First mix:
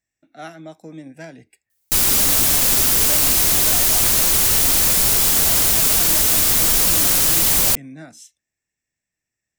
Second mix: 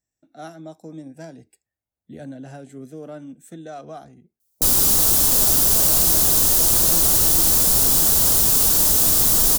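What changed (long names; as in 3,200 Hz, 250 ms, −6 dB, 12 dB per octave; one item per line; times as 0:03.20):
background: entry +2.70 s
master: add parametric band 2,200 Hz −12.5 dB 1.1 octaves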